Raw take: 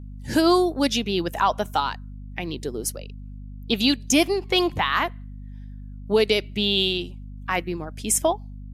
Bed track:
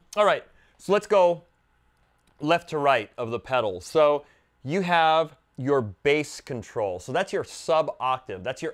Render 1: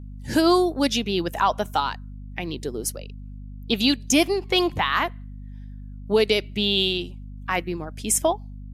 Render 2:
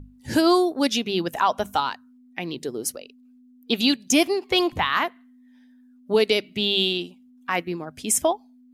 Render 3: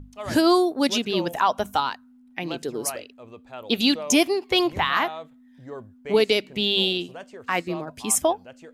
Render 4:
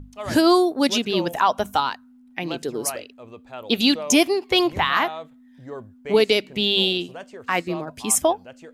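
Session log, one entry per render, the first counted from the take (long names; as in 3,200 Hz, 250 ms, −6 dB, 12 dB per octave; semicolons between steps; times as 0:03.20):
no processing that can be heard
mains-hum notches 50/100/150/200 Hz
mix in bed track −15 dB
level +2 dB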